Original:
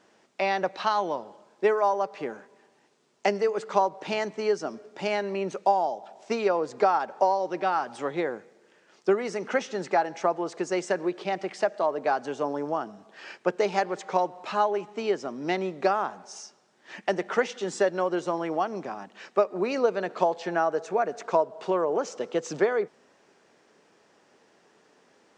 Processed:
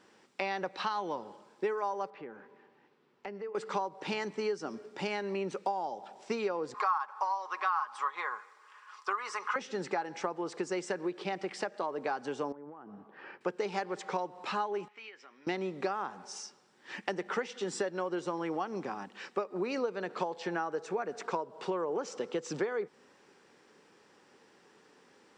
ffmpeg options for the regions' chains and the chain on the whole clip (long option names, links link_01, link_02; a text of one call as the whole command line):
ffmpeg -i in.wav -filter_complex "[0:a]asettb=1/sr,asplit=3[link_01][link_02][link_03];[link_01]atrim=end=2.104[link_04];[link_02]atrim=start=2.1:end=3.55,asetpts=PTS-STARTPTS,afade=type=in:duration=0.004:curve=qsin,afade=type=out:start_time=1.446:duration=0.004:curve=qsin,lowpass=2600,acompressor=threshold=-49dB:ratio=2:attack=3.2:release=140:knee=1:detection=peak[link_05];[link_03]atrim=start=3.546[link_06];[link_04][link_05]acrossfade=duration=0.004:curve1=hsin:curve2=qsin[link_07];[link_07][link_06]acrossfade=duration=0.004:curve1=qsin:curve2=hsin,asettb=1/sr,asplit=3[link_08][link_09][link_10];[link_08]atrim=end=6.744[link_11];[link_09]atrim=start=6.74:end=9.56,asetpts=PTS-STARTPTS,afade=type=in:duration=0.004:curve=qsin,afade=type=out:start_time=2.816:duration=0.004:curve=qsin,highpass=frequency=1100:width_type=q:width=11,aecho=1:1:4.8:0.44,atrim=end_sample=124362[link_12];[link_10]atrim=start=9.556[link_13];[link_11][link_12]acrossfade=duration=0.004:curve1=hsin:curve2=qsin[link_14];[link_14][link_13]acrossfade=duration=0.004:curve1=qsin:curve2=hsin,asettb=1/sr,asplit=3[link_15][link_16][link_17];[link_15]atrim=end=12.524[link_18];[link_16]atrim=start=12.52:end=13.41,asetpts=PTS-STARTPTS,afade=type=in:duration=0.004:curve=qsin,afade=type=out:start_time=0.886:duration=0.004:curve=qsin,lowpass=1500,acompressor=threshold=-42dB:ratio=12:attack=3.2:release=140:knee=1:detection=peak[link_19];[link_17]atrim=start=13.406[link_20];[link_18][link_19]acrossfade=duration=0.004:curve1=hsin:curve2=qsin[link_21];[link_21][link_20]acrossfade=duration=0.004:curve1=qsin:curve2=hsin,asettb=1/sr,asplit=3[link_22][link_23][link_24];[link_22]atrim=end=14.884[link_25];[link_23]atrim=start=14.88:end=15.47,asetpts=PTS-STARTPTS,afade=type=in:duration=0.004:curve=qsin,afade=type=out:start_time=0.586:duration=0.004:curve=qsin,acompressor=threshold=-32dB:ratio=5:attack=3.2:release=140:knee=1:detection=peak,bandpass=frequency=2200:width_type=q:width=2.3,asplit=2[link_26][link_27];[link_27]adelay=19,volume=-14dB[link_28];[link_26][link_28]amix=inputs=2:normalize=0,atrim=end_sample=26019[link_29];[link_24]atrim=start=15.466[link_30];[link_25][link_29]acrossfade=duration=0.004:curve1=hsin:curve2=qsin[link_31];[link_31][link_30]acrossfade=duration=0.004:curve1=qsin:curve2=hsin,equalizer=frequency=650:width=7.2:gain=-12,bandreject=frequency=6500:width=13,acompressor=threshold=-32dB:ratio=3" out.wav